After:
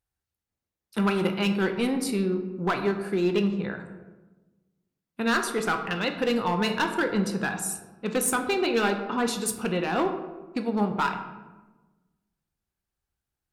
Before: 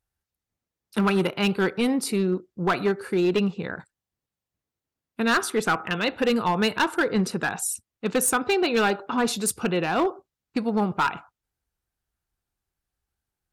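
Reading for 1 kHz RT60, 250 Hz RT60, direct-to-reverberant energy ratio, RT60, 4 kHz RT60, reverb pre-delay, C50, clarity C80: 1.1 s, 1.6 s, 5.5 dB, 1.2 s, 0.65 s, 9 ms, 8.5 dB, 10.5 dB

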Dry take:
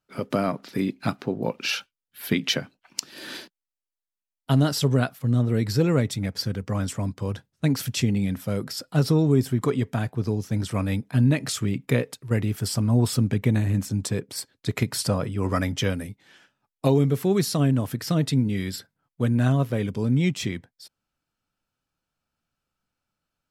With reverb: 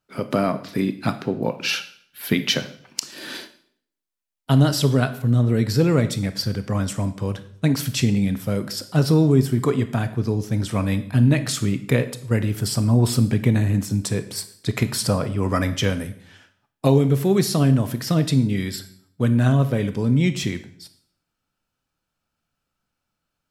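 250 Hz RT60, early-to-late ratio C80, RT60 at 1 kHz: 0.70 s, 16.5 dB, 0.60 s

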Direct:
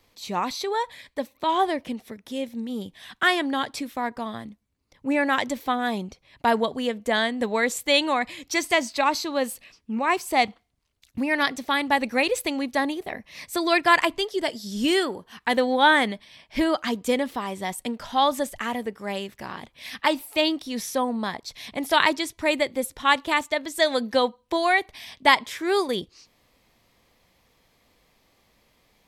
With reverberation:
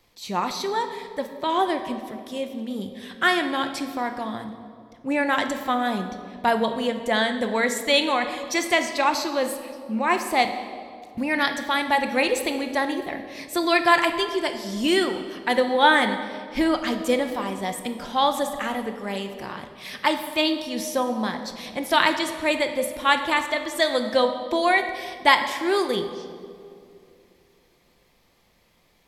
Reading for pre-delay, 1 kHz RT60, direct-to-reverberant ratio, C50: 6 ms, 2.2 s, 6.0 dB, 8.5 dB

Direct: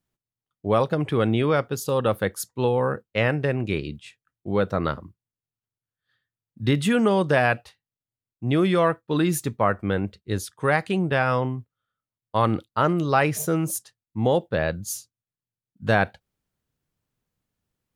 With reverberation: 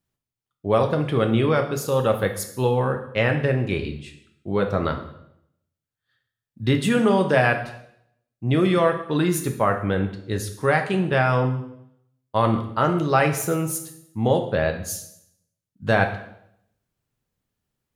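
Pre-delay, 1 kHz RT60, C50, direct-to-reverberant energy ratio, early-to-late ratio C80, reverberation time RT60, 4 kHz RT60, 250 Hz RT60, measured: 4 ms, 0.70 s, 9.5 dB, 5.0 dB, 12.5 dB, 0.75 s, 0.65 s, 0.75 s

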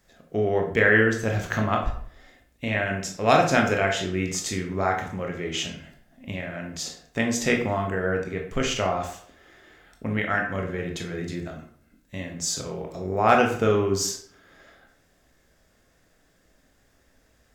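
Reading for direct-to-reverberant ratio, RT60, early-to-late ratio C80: 1.5 dB, 0.60 s, 11.0 dB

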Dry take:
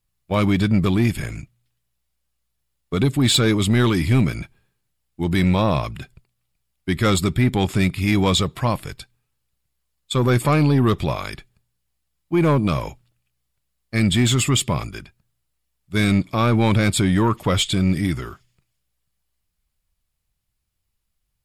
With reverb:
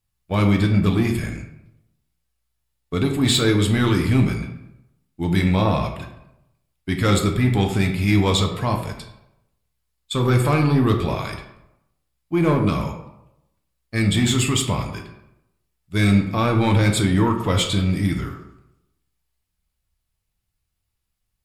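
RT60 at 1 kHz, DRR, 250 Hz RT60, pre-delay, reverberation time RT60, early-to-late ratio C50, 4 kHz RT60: 0.85 s, 2.0 dB, 0.90 s, 4 ms, 0.85 s, 7.5 dB, 0.50 s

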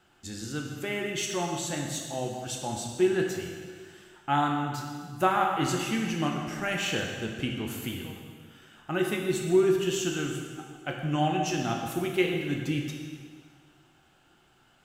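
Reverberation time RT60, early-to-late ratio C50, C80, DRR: 1.8 s, 3.0 dB, 4.5 dB, 1.0 dB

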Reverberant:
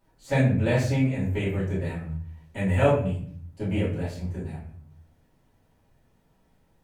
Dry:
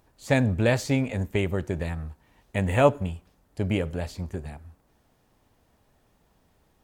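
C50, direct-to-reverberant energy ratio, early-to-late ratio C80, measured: 5.0 dB, −12.0 dB, 9.5 dB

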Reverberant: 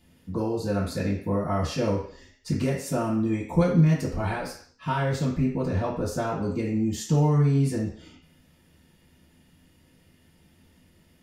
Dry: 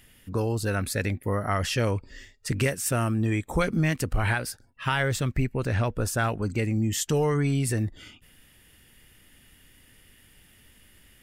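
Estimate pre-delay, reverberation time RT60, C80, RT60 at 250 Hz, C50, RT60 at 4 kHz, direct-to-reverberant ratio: 3 ms, 0.50 s, 9.5 dB, 0.50 s, 5.5 dB, 0.60 s, −11.0 dB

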